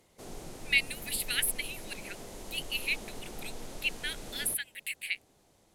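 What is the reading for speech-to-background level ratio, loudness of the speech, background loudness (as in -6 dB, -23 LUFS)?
13.0 dB, -32.5 LUFS, -45.5 LUFS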